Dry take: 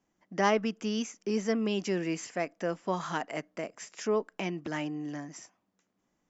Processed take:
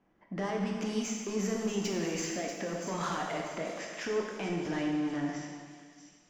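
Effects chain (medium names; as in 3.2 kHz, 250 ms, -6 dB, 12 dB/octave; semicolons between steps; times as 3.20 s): level-controlled noise filter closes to 2.4 kHz, open at -25.5 dBFS; in parallel at +0.5 dB: compressor with a negative ratio -34 dBFS; on the sum: peak limiter -22 dBFS, peak gain reduction 10.5 dB; saturation -27.5 dBFS, distortion -14 dB; feedback echo behind a high-pass 638 ms, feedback 43%, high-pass 4.6 kHz, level -7 dB; reverberation RT60 1.8 s, pre-delay 13 ms, DRR -0.5 dB; trim -2.5 dB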